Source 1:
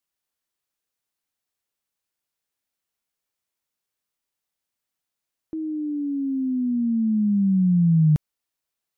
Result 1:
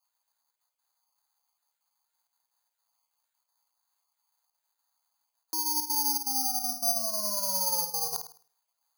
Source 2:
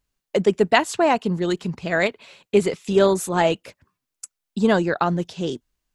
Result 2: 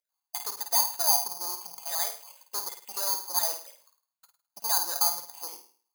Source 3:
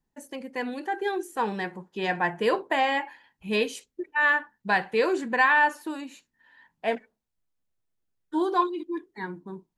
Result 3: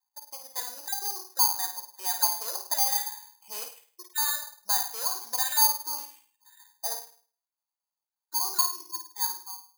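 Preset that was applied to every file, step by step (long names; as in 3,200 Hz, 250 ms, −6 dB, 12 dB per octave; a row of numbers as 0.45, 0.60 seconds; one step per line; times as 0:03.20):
time-frequency cells dropped at random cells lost 26%
in parallel at +0.5 dB: downward compressor, threshold −28 dBFS
on the sum: soft clipping −20 dBFS
four-pole ladder band-pass 1,000 Hz, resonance 65%
high-frequency loss of the air 210 metres
tuned comb filter 700 Hz, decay 0.46 s, mix 70%
on a send: flutter between parallel walls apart 9 metres, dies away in 0.44 s
on the sum: bad sample-rate conversion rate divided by 8×, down none, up zero stuff
loudness normalisation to −27 LKFS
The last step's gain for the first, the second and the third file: +20.5, +9.5, +9.5 decibels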